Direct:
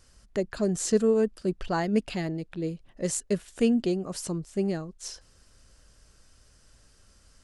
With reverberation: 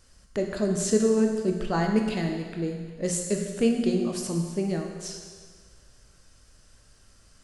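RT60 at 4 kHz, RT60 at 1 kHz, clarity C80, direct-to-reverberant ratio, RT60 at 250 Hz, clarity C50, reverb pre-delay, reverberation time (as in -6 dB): 1.6 s, 1.6 s, 5.5 dB, 2.5 dB, 1.6 s, 4.0 dB, 17 ms, 1.6 s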